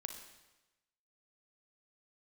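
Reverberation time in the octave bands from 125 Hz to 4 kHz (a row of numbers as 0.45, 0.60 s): 1.1, 1.0, 1.1, 1.0, 1.0, 1.0 s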